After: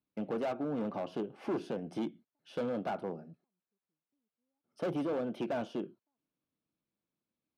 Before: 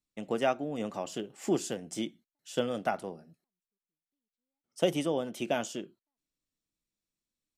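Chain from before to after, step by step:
moving average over 6 samples
in parallel at −2 dB: downward compressor, threshold −39 dBFS, peak gain reduction 17 dB
on the sum: gain into a clipping stage and back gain 30.5 dB
high-pass filter 110 Hz 12 dB per octave
high-shelf EQ 2,100 Hz −11.5 dB
notch filter 1,900 Hz, Q 8.9
level +1 dB

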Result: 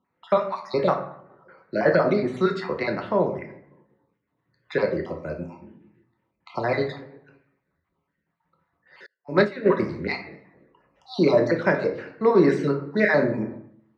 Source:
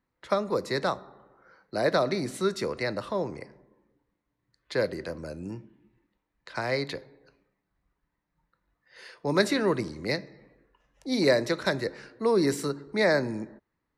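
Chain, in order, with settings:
time-frequency cells dropped at random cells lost 39%
in parallel at −4 dB: soft clipping −19 dBFS, distortion −15 dB
on the sum: band-pass filter 110–2,600 Hz
convolution reverb RT60 0.60 s, pre-delay 5 ms, DRR 3 dB
0:09.06–0:09.66: expander for the loud parts 2.5 to 1, over −39 dBFS
level +2 dB

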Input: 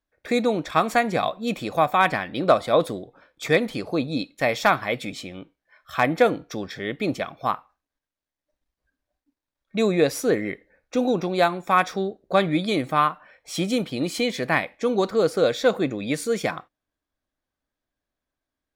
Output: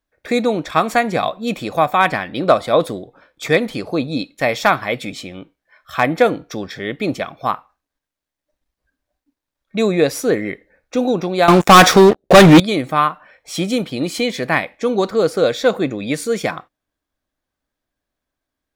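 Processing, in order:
0:11.48–0:12.60: leveller curve on the samples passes 5
level +4.5 dB

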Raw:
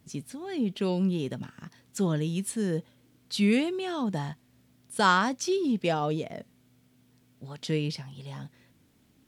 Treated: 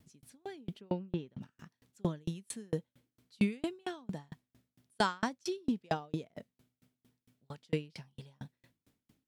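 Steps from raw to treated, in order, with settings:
0:00.80–0:01.40: low-pass filter 1,700 Hz → 4,500 Hz 12 dB per octave
tremolo with a ramp in dB decaying 4.4 Hz, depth 39 dB

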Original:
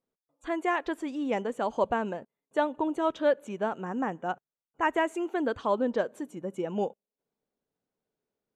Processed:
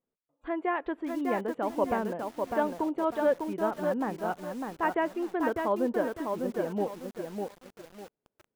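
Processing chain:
high-frequency loss of the air 440 metres
feedback echo at a low word length 601 ms, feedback 35%, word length 8 bits, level −4 dB

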